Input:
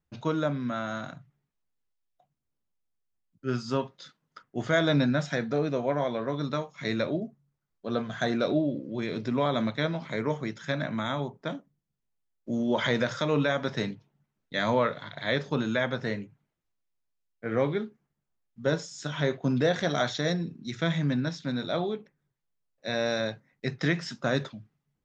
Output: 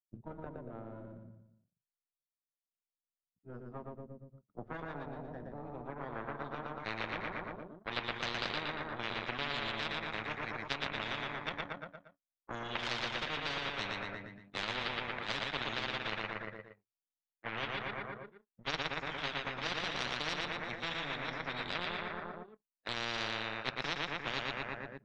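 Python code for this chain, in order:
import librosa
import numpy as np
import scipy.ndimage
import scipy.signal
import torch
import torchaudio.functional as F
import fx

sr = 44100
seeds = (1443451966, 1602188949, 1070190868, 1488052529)

p1 = fx.chorus_voices(x, sr, voices=2, hz=0.32, base_ms=10, depth_ms=1.2, mix_pct=70)
p2 = fx.power_curve(p1, sr, exponent=2.0)
p3 = p2 + fx.echo_feedback(p2, sr, ms=117, feedback_pct=41, wet_db=-5.0, dry=0)
p4 = fx.filter_sweep_lowpass(p3, sr, from_hz=230.0, to_hz=1800.0, start_s=5.48, end_s=7.4, q=1.4)
y = fx.spectral_comp(p4, sr, ratio=10.0)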